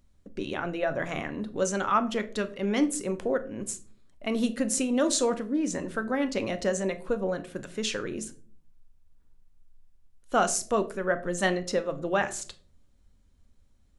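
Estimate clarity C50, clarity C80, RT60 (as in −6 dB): 16.5 dB, 20.5 dB, 0.45 s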